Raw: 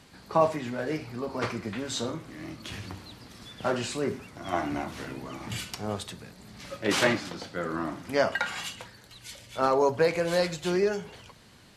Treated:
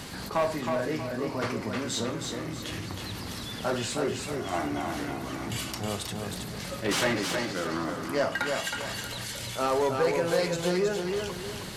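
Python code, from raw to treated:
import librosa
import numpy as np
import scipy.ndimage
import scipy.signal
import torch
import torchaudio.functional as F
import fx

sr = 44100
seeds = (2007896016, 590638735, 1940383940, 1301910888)

p1 = fx.high_shelf(x, sr, hz=9800.0, db=7.0)
p2 = fx.notch(p1, sr, hz=2400.0, q=29.0)
p3 = fx.over_compress(p2, sr, threshold_db=-51.0, ratio=-1.0)
p4 = p2 + (p3 * 10.0 ** (-2.0 / 20.0))
p5 = 10.0 ** (-19.5 / 20.0) * np.tanh(p4 / 10.0 ** (-19.5 / 20.0))
y = fx.echo_feedback(p5, sr, ms=318, feedback_pct=36, wet_db=-4.5)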